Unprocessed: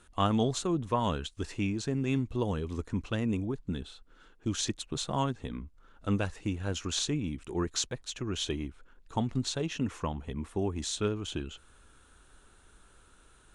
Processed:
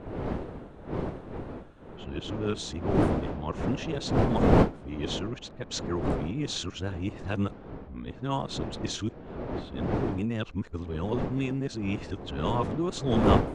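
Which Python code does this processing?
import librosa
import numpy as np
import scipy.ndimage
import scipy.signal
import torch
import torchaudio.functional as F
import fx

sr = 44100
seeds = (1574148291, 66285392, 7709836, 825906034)

y = np.flip(x).copy()
y = fx.dmg_wind(y, sr, seeds[0], corner_hz=420.0, level_db=-31.0)
y = fx.env_lowpass(y, sr, base_hz=2900.0, full_db=-19.0)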